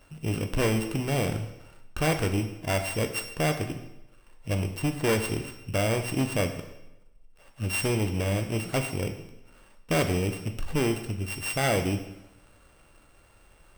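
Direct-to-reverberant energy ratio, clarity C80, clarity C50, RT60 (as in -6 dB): 6.0 dB, 11.0 dB, 9.5 dB, 0.95 s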